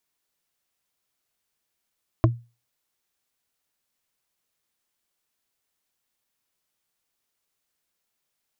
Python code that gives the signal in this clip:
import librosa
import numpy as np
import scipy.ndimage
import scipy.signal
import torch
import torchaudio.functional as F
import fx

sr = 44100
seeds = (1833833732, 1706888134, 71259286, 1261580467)

y = fx.strike_wood(sr, length_s=0.45, level_db=-11.5, body='bar', hz=118.0, decay_s=0.3, tilt_db=2.0, modes=4)